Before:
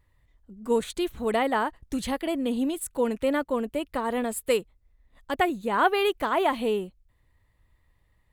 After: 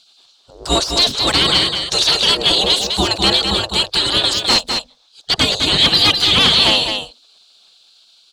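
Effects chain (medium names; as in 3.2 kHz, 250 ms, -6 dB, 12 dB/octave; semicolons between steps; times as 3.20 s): octave divider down 2 oct, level +1 dB; high-pass 130 Hz 12 dB/octave; hum notches 50/100/150/200/250/300/350/400 Hz; spectral gate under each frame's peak -20 dB weak; resonant high shelf 2.9 kHz +12 dB, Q 3; in parallel at -3.5 dB: sine folder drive 19 dB, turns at -6.5 dBFS; on the sum: distance through air 130 m; on a send: delay 206 ms -6 dB; on the sum: trim +5 dB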